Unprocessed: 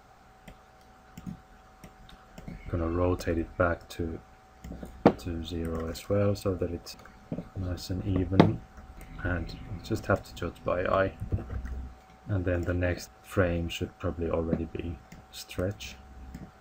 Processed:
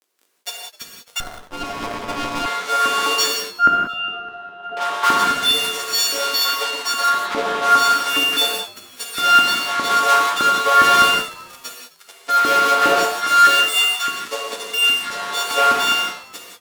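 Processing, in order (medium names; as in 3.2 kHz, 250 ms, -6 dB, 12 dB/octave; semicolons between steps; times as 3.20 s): partials quantised in pitch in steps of 4 st; high-pass 77 Hz; treble shelf 7.6 kHz -6.5 dB; comb 4.3 ms, depth 73%; in parallel at 0 dB: compression, threshold -34 dBFS, peak gain reduction 21.5 dB; on the sum: LFO band-pass sine 0.37 Hz 980–5100 Hz; fuzz box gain 45 dB, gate -46 dBFS; 3.45–4.77 s: pitch-class resonator F, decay 0.1 s; LFO high-pass saw up 4.9 Hz 280–1600 Hz; on a send: frequency-shifting echo 259 ms, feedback 34%, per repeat -91 Hz, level -21.5 dB; on the sum: gated-style reverb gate 210 ms flat, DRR -1 dB; 1.20–2.46 s: sliding maximum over 17 samples; trim -4.5 dB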